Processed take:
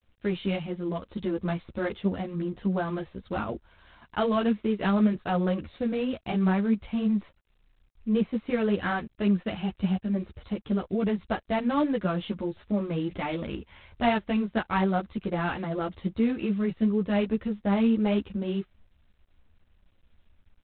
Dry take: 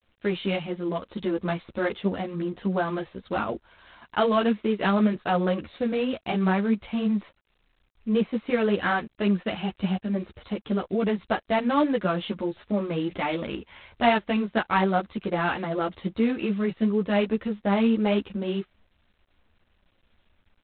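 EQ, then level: bass shelf 170 Hz +11.5 dB; -5.0 dB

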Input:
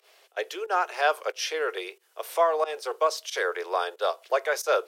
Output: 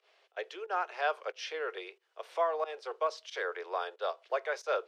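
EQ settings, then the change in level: band-pass 290–4100 Hz; -7.5 dB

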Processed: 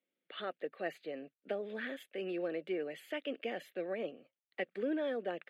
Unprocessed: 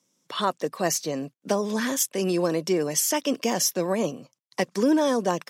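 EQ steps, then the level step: high-pass 500 Hz 12 dB/octave; distance through air 390 m; static phaser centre 2.4 kHz, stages 4; -4.0 dB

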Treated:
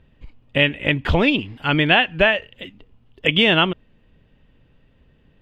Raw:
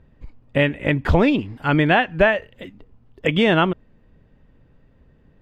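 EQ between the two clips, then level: peaking EQ 3 kHz +12 dB 0.83 oct; -2.0 dB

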